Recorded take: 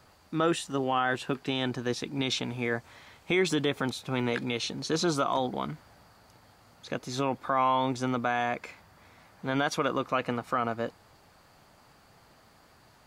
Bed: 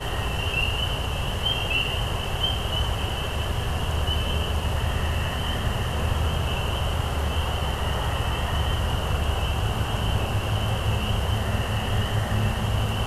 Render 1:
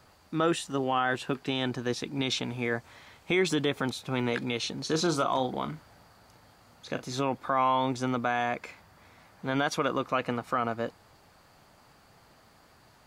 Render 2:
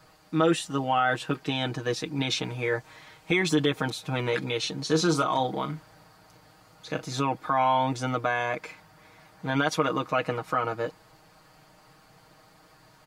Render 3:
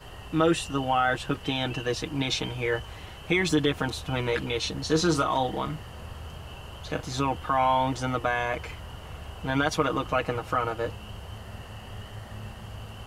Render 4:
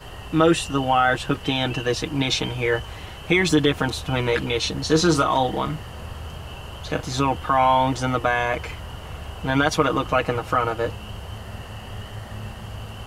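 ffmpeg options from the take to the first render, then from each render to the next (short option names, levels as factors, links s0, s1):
-filter_complex "[0:a]asettb=1/sr,asplit=3[s0][s1][s2];[s0]atrim=end=4.854[s3];[s1]atrim=start=4.85:end=7.17,asetpts=PTS-STARTPTS,afade=t=in:d=0.004:c=qsin,afade=t=out:st=2.316:d=0.004:c=qsin,asplit=2[s4][s5];[s5]adelay=38,volume=0.282[s6];[s4][s6]amix=inputs=2:normalize=0,atrim=end_sample=102312[s7];[s2]atrim=start=7.166[s8];[s3][s7]acrossfade=d=0.004:c1=hsin:c2=qsin[s9];[s9][s8]acrossfade=d=0.004:c1=qsin:c2=hsin"
-af "aecho=1:1:6.4:0.85"
-filter_complex "[1:a]volume=0.158[s0];[0:a][s0]amix=inputs=2:normalize=0"
-af "volume=1.88"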